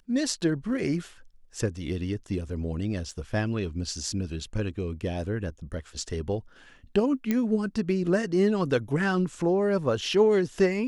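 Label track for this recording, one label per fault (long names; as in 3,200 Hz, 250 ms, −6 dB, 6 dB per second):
3.110000	3.110000	drop-out 3.4 ms
7.310000	7.310000	click −13 dBFS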